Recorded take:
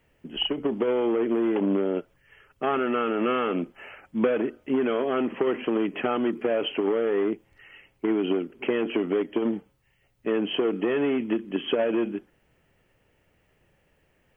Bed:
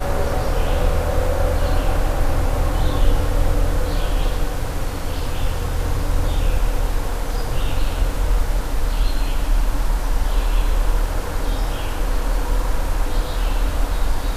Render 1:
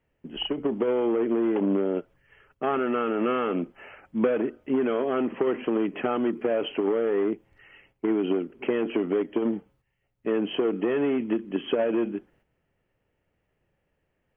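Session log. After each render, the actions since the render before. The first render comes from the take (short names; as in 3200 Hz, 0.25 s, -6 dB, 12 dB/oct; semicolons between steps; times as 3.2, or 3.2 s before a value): gate -59 dBFS, range -8 dB; high shelf 3000 Hz -9 dB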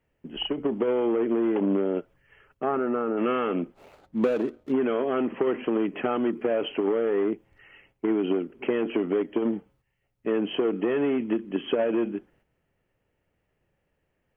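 2.63–3.16 LPF 1600 Hz -> 1100 Hz; 3.74–4.72 median filter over 25 samples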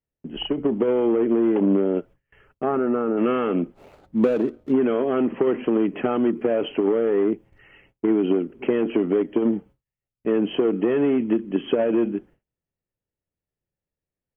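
low shelf 490 Hz +7 dB; gate with hold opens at -46 dBFS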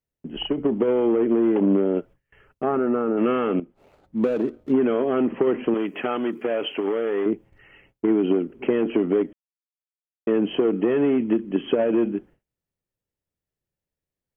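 3.6–4.62 fade in, from -13 dB; 5.74–7.26 tilt +3 dB/oct; 9.33–10.27 mute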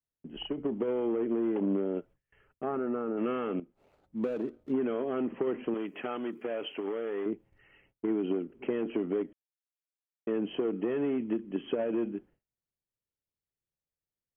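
gain -10 dB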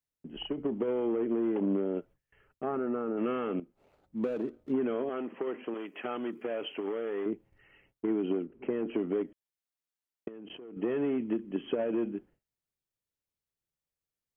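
5.09–6.05 HPF 470 Hz 6 dB/oct; 8.46–8.89 air absorption 340 m; 10.28–10.77 level quantiser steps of 23 dB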